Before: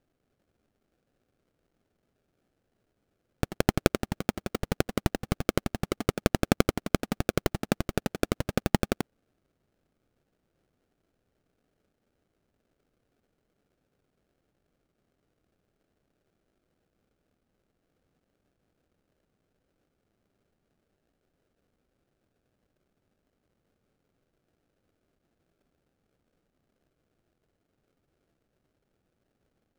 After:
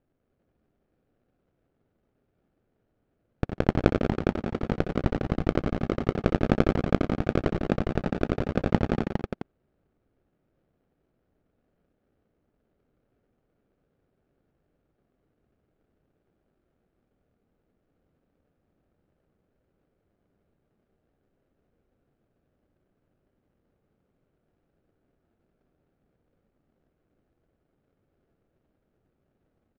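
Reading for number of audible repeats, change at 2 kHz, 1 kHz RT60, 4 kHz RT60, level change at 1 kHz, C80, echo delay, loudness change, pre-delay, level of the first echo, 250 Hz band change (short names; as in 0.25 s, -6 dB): 5, -1.5 dB, none, none, +1.0 dB, none, 62 ms, +2.5 dB, none, -13.0 dB, +3.5 dB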